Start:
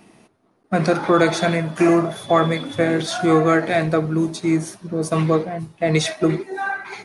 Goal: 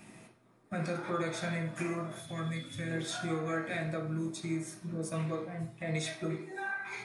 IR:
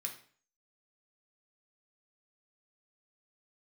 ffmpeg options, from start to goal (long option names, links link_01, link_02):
-filter_complex "[0:a]asettb=1/sr,asplit=3[link_01][link_02][link_03];[link_01]atrim=end=2.204[link_04];[link_02]atrim=start=2.2:end=2.91,asetpts=PTS-STARTPTS,afade=type=in:duration=0.004:curve=qsin,afade=type=out:start_time=0.706:duration=0.004:curve=qsin,equalizer=frequency=770:width_type=o:width=2.5:gain=-14.5[link_05];[link_03]atrim=start=2.906[link_06];[link_04][link_05]acrossfade=duration=0.004:curve1=hsin:curve2=qsin[link_07];[link_07][link_06]acrossfade=duration=0.004:curve1=qsin:curve2=hsin,acompressor=threshold=-41dB:ratio=2[link_08];[1:a]atrim=start_sample=2205[link_09];[link_08][link_09]afir=irnorm=-1:irlink=0"